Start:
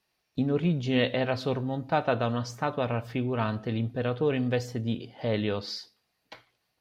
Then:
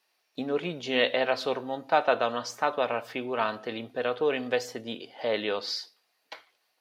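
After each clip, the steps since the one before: high-pass 460 Hz 12 dB/octave; trim +4 dB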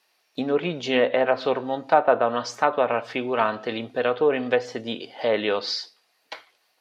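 low-pass that closes with the level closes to 1.3 kHz, closed at -20.5 dBFS; trim +6 dB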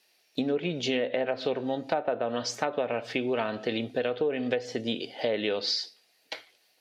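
peaking EQ 1.1 kHz -11.5 dB 1 oct; compression 6:1, threshold -27 dBFS, peak gain reduction 10.5 dB; trim +2.5 dB

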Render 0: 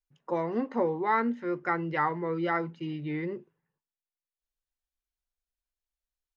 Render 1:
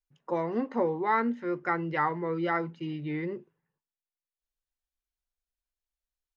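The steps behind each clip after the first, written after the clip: no audible change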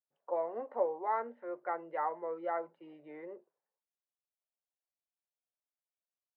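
ladder band-pass 700 Hz, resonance 55%; trim +4.5 dB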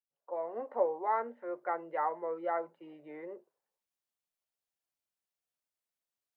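fade-in on the opening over 0.67 s; trim +2 dB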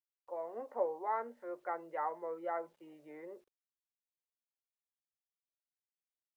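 bit crusher 12-bit; trim -4.5 dB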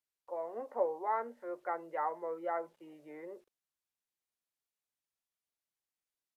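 resampled via 32 kHz; trim +2 dB

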